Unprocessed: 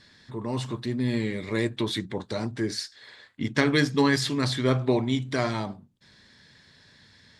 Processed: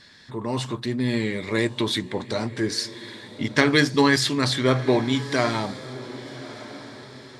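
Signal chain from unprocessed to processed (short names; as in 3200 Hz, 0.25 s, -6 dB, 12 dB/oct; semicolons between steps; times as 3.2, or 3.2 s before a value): low shelf 320 Hz -5 dB; diffused feedback echo 1.205 s, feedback 40%, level -15.5 dB; gain +5.5 dB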